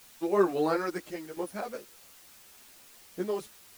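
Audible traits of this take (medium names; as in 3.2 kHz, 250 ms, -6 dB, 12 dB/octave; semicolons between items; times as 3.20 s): tremolo saw down 0.73 Hz, depth 75%; a quantiser's noise floor 10-bit, dither triangular; a shimmering, thickened sound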